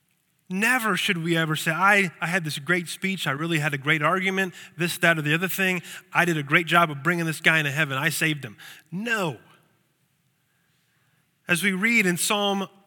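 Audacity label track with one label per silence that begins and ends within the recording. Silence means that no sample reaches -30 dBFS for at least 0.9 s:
9.340000	11.490000	silence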